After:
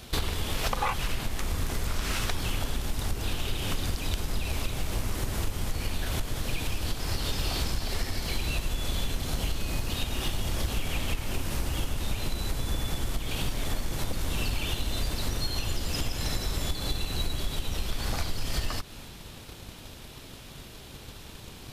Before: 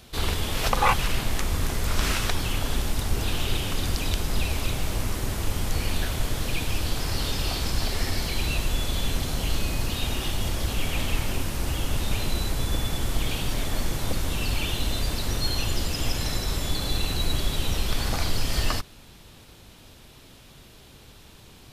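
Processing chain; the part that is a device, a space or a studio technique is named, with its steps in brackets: drum-bus smash (transient shaper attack +7 dB, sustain +2 dB; compressor 6:1, threshold -27 dBFS, peak gain reduction 15 dB; soft clip -21 dBFS, distortion -20 dB); gain +3.5 dB

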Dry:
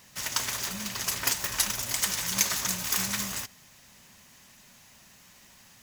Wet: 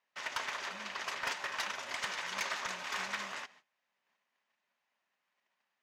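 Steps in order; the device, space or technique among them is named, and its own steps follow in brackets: walkie-talkie (BPF 510–2500 Hz; hard clip -28.5 dBFS, distortion -14 dB; gate -58 dBFS, range -22 dB)

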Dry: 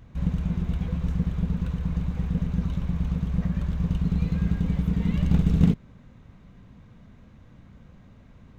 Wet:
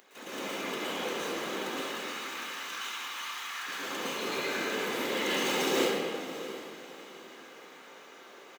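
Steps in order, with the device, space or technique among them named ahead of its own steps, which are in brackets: 1.76–3.67 inverse Chebyshev high-pass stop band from 310 Hz, stop band 60 dB; comb 2.4 ms, depth 53%; whispering ghost (whisperiser; HPF 360 Hz 24 dB/oct; reverb RT60 1.9 s, pre-delay 0.108 s, DRR -10 dB); tilt +3 dB/oct; diffused feedback echo 0.677 s, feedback 40%, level -14.5 dB

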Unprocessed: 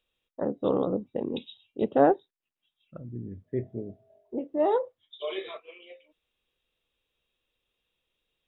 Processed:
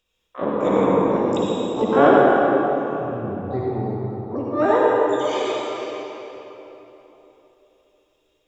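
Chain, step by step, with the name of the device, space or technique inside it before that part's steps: shimmer-style reverb (harmoniser +12 st -8 dB; reverb RT60 3.6 s, pre-delay 50 ms, DRR -5 dB); gain +3.5 dB

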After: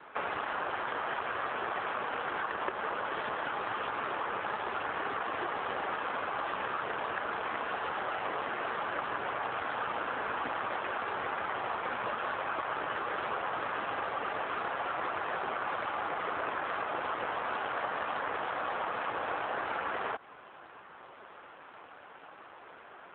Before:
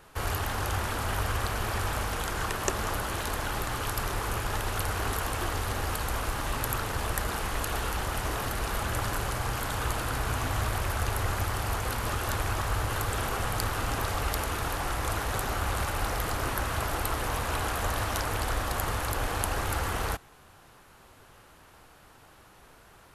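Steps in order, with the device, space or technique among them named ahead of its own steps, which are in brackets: voicemail (BPF 350–2700 Hz; compressor 6:1, threshold -38 dBFS, peak gain reduction 12.5 dB; gain +9 dB; AMR-NB 7.4 kbps 8000 Hz)

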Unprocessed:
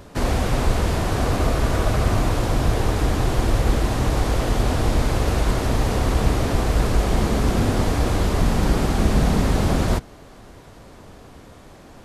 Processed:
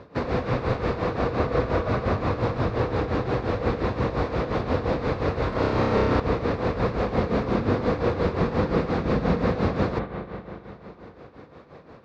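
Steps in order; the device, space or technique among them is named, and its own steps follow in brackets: combo amplifier with spring reverb and tremolo (spring tank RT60 3.5 s, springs 34/40 ms, chirp 55 ms, DRR 5.5 dB; tremolo 5.7 Hz, depth 70%; speaker cabinet 97–4000 Hz, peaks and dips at 490 Hz +9 dB, 1100 Hz +4 dB, 3100 Hz -9 dB); bell 670 Hz -2.5 dB 2.1 oct; 5.49–6.2 flutter echo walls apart 5.3 m, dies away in 0.98 s

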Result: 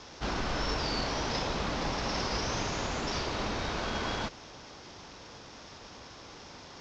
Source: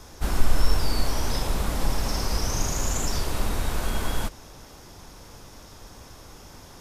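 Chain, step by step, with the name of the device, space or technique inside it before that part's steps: early wireless headset (HPF 190 Hz 6 dB/oct; CVSD 32 kbps)

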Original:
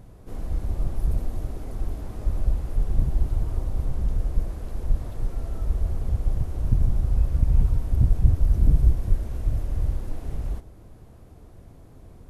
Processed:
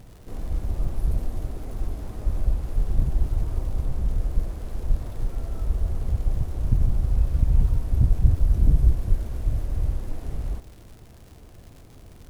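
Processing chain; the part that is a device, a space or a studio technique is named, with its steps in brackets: vinyl LP (crackle 140/s -40 dBFS; pink noise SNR 41 dB)

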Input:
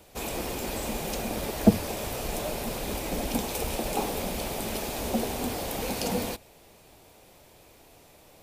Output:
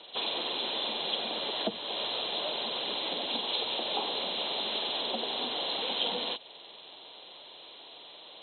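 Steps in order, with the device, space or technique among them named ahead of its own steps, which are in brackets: hearing aid with frequency lowering (nonlinear frequency compression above 2700 Hz 4:1; compressor 2:1, threshold -37 dBFS, peak gain reduction 14 dB; speaker cabinet 360–6700 Hz, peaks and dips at 1000 Hz +5 dB, 3300 Hz +8 dB, 4700 Hz -6 dB); gain +2 dB

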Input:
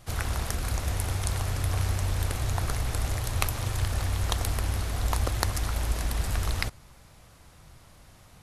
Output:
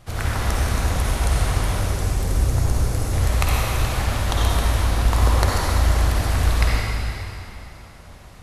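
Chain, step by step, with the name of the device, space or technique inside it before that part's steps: 1.71–3.13 band shelf 1700 Hz -8 dB 2.8 oct; swimming-pool hall (reverb RT60 2.9 s, pre-delay 47 ms, DRR -5.5 dB; high shelf 4600 Hz -6.5 dB); gain +3.5 dB

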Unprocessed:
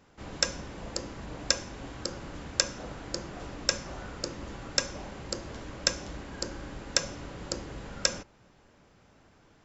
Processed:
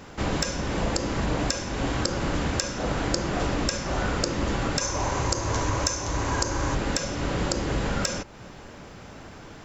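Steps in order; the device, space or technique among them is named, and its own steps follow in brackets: 4.81–6.75 thirty-one-band EQ 100 Hz +10 dB, 200 Hz -12 dB, 1000 Hz +9 dB, 3150 Hz -3 dB, 6300 Hz +10 dB; loud club master (compressor 2:1, threshold -40 dBFS, peak gain reduction 13.5 dB; hard clip -12.5 dBFS, distortion -36 dB; maximiser +22.5 dB); gain -5.5 dB

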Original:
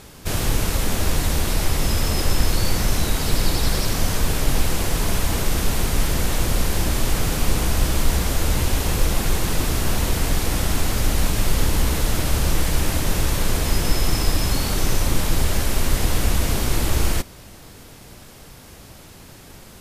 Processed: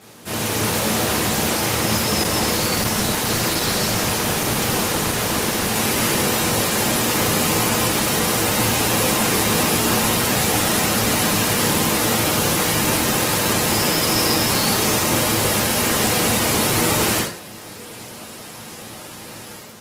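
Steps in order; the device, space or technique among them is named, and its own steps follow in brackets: far-field microphone of a smart speaker (reverb RT60 0.45 s, pre-delay 7 ms, DRR -5 dB; HPF 130 Hz 24 dB/oct; AGC gain up to 7 dB; gain -3.5 dB; Opus 16 kbps 48000 Hz)

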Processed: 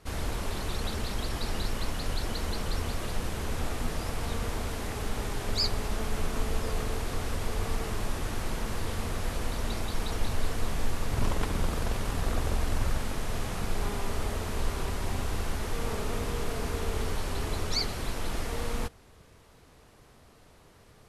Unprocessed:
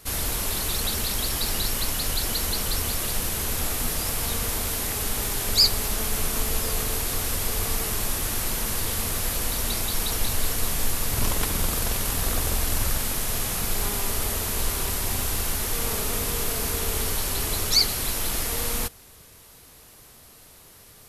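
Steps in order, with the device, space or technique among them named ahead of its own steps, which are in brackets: through cloth (LPF 9100 Hz 12 dB/oct; high shelf 2800 Hz -13 dB); gain -1.5 dB

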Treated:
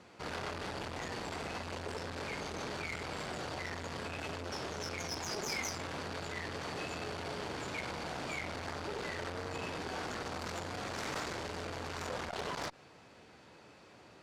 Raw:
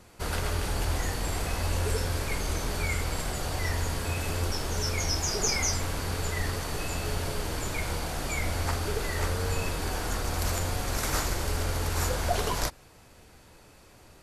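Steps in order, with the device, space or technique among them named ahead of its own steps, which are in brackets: valve radio (BPF 150–4600 Hz; tube stage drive 30 dB, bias 0.3; core saturation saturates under 600 Hz)

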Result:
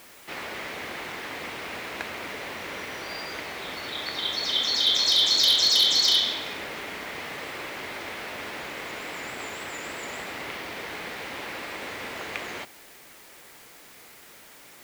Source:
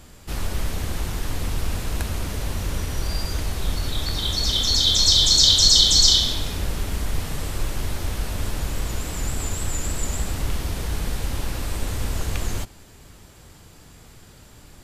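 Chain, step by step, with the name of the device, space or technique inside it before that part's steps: drive-through speaker (BPF 390–3600 Hz; bell 2100 Hz +7.5 dB 0.53 oct; hard clip -13.5 dBFS, distortion -20 dB; white noise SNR 22 dB)

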